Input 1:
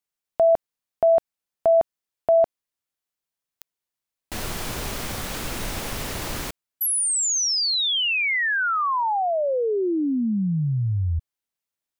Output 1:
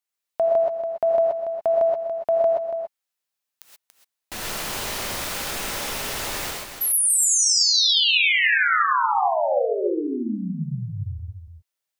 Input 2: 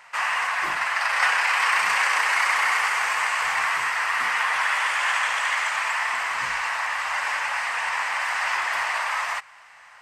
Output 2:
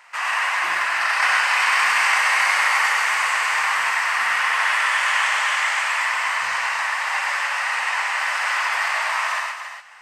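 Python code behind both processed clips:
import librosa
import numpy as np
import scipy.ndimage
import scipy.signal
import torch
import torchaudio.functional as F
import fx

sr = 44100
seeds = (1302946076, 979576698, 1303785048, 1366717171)

y = fx.low_shelf(x, sr, hz=350.0, db=-10.0)
y = y + 10.0 ** (-8.5 / 20.0) * np.pad(y, (int(284 * sr / 1000.0), 0))[:len(y)]
y = fx.rev_gated(y, sr, seeds[0], gate_ms=150, shape='rising', drr_db=-0.5)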